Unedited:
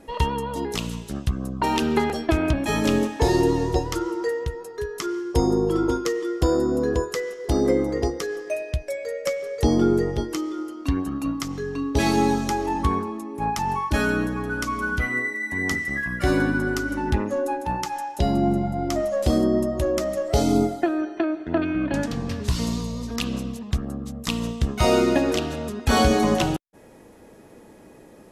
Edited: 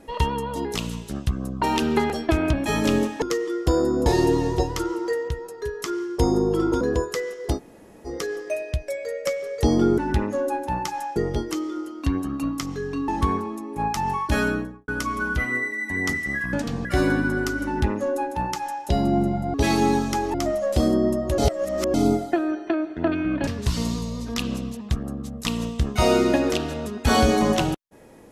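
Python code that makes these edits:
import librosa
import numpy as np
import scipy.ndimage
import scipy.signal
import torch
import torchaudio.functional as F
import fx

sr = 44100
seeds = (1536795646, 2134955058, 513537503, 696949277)

y = fx.studio_fade_out(x, sr, start_s=14.04, length_s=0.46)
y = fx.edit(y, sr, fx.move(start_s=5.97, length_s=0.84, to_s=3.22),
    fx.room_tone_fill(start_s=7.55, length_s=0.54, crossfade_s=0.1),
    fx.move(start_s=11.9, length_s=0.8, to_s=18.84),
    fx.duplicate(start_s=16.96, length_s=1.18, to_s=9.98),
    fx.reverse_span(start_s=19.88, length_s=0.56),
    fx.move(start_s=21.97, length_s=0.32, to_s=16.15), tone=tone)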